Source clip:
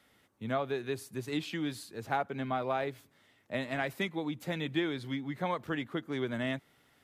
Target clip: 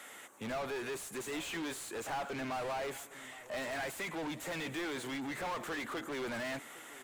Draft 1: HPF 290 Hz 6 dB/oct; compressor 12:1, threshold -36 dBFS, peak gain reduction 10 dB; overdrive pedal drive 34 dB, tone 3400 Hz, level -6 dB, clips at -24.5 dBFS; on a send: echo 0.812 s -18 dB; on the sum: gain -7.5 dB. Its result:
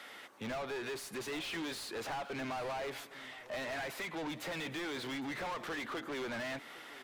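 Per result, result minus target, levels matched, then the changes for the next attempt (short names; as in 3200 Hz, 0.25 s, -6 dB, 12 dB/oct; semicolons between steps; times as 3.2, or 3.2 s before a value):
compressor: peak gain reduction +10 dB; 8000 Hz band -3.5 dB
remove: compressor 12:1, threshold -36 dBFS, peak gain reduction 10 dB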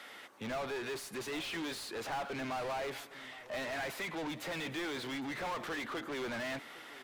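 8000 Hz band -4.0 dB
add after HPF: resonant high shelf 6000 Hz +7 dB, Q 3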